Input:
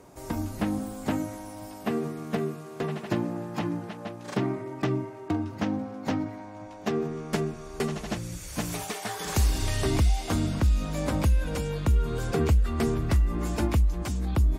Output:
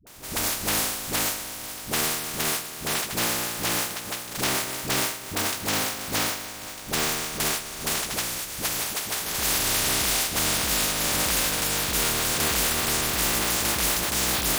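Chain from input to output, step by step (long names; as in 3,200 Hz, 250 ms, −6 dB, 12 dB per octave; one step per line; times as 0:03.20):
compressing power law on the bin magnitudes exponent 0.2
brickwall limiter −19 dBFS, peak gain reduction 11 dB
all-pass dispersion highs, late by 69 ms, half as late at 370 Hz
level +5 dB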